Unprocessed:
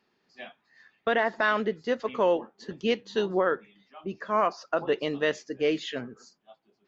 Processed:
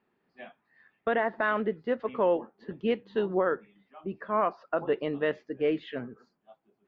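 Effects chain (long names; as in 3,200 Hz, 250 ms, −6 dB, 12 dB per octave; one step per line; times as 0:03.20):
high-frequency loss of the air 480 metres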